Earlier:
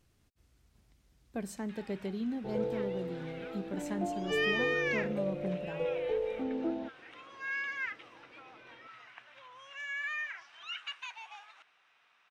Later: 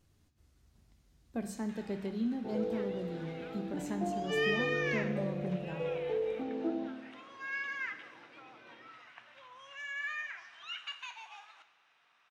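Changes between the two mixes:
second sound: add high-pass filter 160 Hz 12 dB per octave
reverb: on, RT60 1.1 s

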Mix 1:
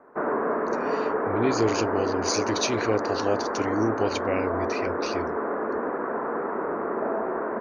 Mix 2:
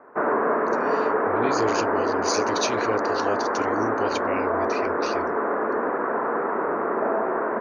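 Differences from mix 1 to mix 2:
background +6.0 dB
master: add low-shelf EQ 450 Hz −6 dB

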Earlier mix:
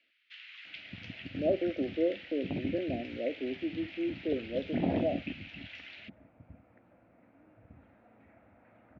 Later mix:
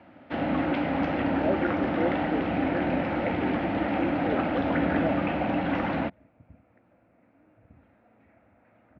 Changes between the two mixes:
first sound: remove inverse Chebyshev high-pass filter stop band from 750 Hz, stop band 60 dB
reverb: on, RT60 0.60 s

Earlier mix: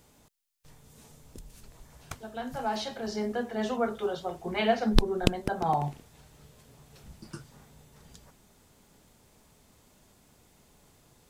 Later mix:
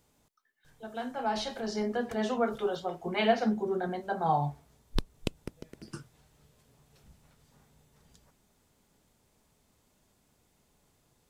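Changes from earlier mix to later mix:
speech: entry −1.40 s
background −8.5 dB

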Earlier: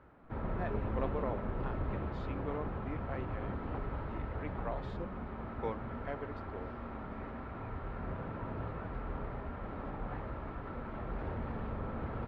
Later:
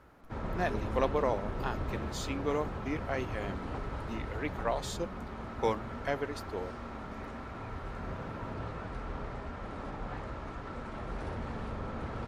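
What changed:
speech +7.0 dB
master: remove high-frequency loss of the air 400 metres

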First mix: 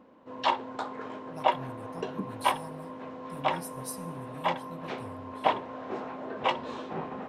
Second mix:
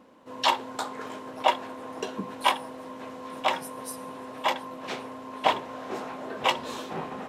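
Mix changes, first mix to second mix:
speech: add high-pass filter 390 Hz 12 dB per octave
background: remove head-to-tape spacing loss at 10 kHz 23 dB

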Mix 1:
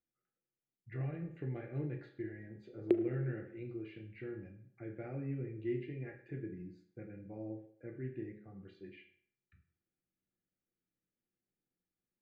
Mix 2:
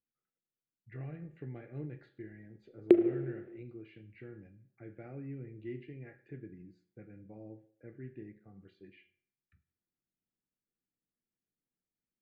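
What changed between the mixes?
speech: send −9.5 dB
background +8.0 dB

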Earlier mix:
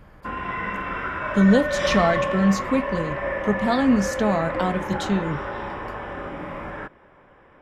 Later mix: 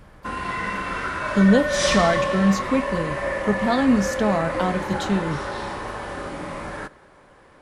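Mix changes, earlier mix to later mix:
background: remove Savitzky-Golay smoothing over 25 samples
reverb: on, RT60 1.4 s

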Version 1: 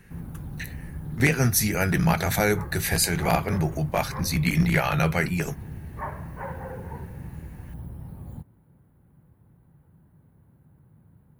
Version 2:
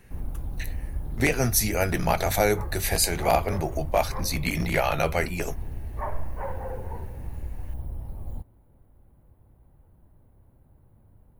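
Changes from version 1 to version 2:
background: remove high-pass filter 84 Hz 12 dB per octave
master: add graphic EQ with 15 bands 160 Hz −10 dB, 630 Hz +5 dB, 1,600 Hz −5 dB

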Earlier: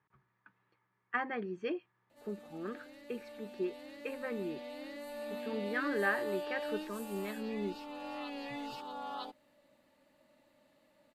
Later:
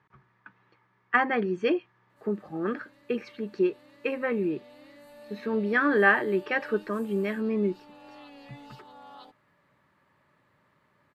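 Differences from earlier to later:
speech +11.5 dB
background −6.5 dB

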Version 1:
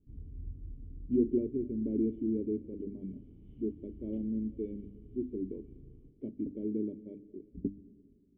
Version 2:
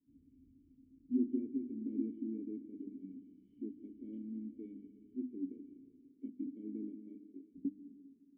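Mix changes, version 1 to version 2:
speech: send +8.5 dB
master: add formant filter i

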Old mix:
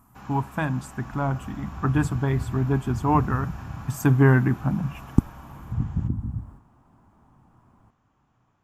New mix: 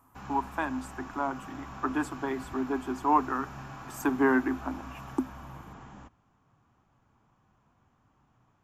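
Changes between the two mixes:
speech: add Chebyshev high-pass with heavy ripple 250 Hz, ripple 6 dB
second sound: muted

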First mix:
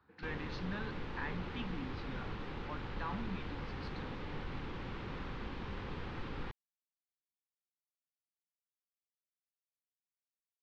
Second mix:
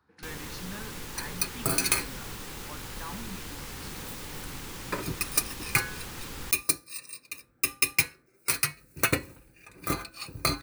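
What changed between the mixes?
first sound: add high-shelf EQ 2,500 Hz +12 dB
second sound: unmuted
master: remove low-pass filter 4,000 Hz 24 dB per octave

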